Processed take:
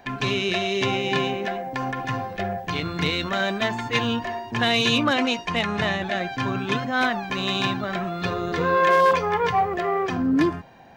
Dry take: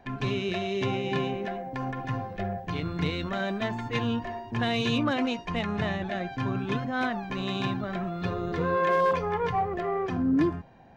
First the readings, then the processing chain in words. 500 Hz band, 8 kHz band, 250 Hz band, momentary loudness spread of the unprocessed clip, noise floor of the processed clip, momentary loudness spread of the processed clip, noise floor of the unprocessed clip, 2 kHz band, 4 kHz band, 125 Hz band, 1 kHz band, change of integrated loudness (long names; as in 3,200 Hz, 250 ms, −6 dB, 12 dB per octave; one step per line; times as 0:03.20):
+5.0 dB, can't be measured, +3.0 dB, 8 LU, −38 dBFS, 9 LU, −43 dBFS, +9.0 dB, +10.5 dB, +1.0 dB, +7.0 dB, +5.5 dB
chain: spectral tilt +2 dB per octave
level +7 dB